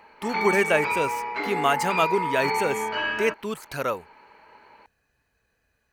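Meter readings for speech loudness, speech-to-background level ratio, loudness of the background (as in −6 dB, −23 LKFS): −26.0 LKFS, 1.0 dB, −27.0 LKFS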